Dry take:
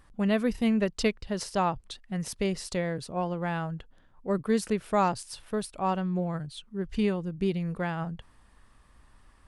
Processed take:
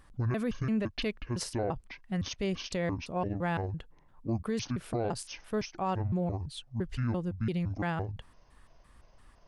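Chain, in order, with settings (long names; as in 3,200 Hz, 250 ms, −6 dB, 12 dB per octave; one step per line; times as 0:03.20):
pitch shifter gated in a rhythm −9.5 semitones, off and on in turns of 170 ms
brickwall limiter −23 dBFS, peak gain reduction 9.5 dB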